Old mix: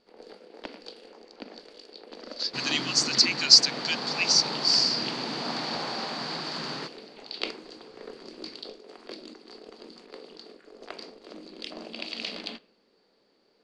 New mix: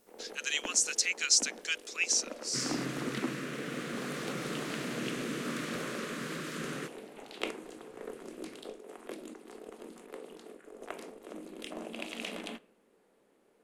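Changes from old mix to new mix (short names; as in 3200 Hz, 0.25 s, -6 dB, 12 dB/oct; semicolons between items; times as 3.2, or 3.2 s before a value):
speech: entry -2.20 s; second sound: add Butterworth band-stop 810 Hz, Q 1.2; master: remove synth low-pass 4600 Hz, resonance Q 13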